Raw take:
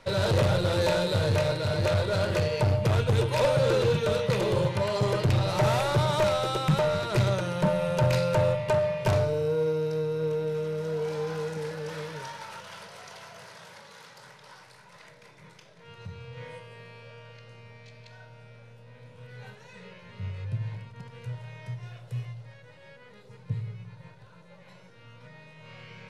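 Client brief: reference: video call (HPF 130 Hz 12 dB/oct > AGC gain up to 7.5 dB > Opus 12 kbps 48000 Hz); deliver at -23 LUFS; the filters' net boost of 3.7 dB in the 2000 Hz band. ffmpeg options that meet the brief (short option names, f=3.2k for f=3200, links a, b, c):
-af "highpass=130,equalizer=f=2k:t=o:g=5,dynaudnorm=m=7.5dB,volume=2.5dB" -ar 48000 -c:a libopus -b:a 12k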